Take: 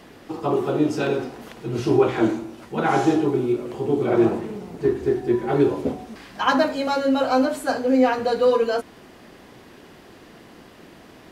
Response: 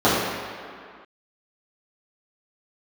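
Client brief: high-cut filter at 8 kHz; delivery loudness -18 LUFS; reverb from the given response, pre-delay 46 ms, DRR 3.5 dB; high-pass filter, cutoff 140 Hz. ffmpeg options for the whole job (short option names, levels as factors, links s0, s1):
-filter_complex "[0:a]highpass=140,lowpass=8000,asplit=2[s0][s1];[1:a]atrim=start_sample=2205,adelay=46[s2];[s1][s2]afir=irnorm=-1:irlink=0,volume=0.0422[s3];[s0][s3]amix=inputs=2:normalize=0,volume=1.12"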